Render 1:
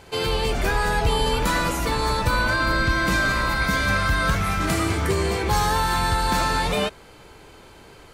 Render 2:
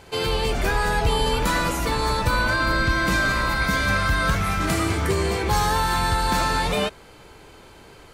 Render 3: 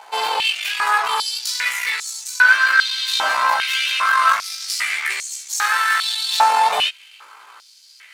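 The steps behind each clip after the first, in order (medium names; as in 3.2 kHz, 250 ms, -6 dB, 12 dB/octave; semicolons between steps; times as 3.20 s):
no audible change
partial rectifier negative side -12 dB; chorus 0.76 Hz, delay 15.5 ms, depth 2.1 ms; step-sequenced high-pass 2.5 Hz 850–6600 Hz; trim +8 dB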